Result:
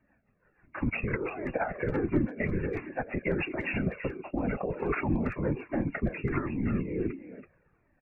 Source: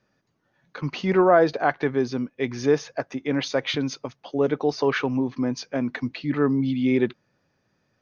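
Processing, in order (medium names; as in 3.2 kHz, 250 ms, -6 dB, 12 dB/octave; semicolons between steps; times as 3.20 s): knee-point frequency compression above 2.1 kHz 1.5:1; band-stop 420 Hz, Q 12; compressor with a negative ratio -27 dBFS, ratio -1; rotary cabinet horn 6 Hz, later 1 Hz, at 3.76 s; whisper effect; brick-wall FIR low-pass 2.8 kHz; speakerphone echo 330 ms, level -8 dB; Shepard-style flanger falling 1.4 Hz; trim +4.5 dB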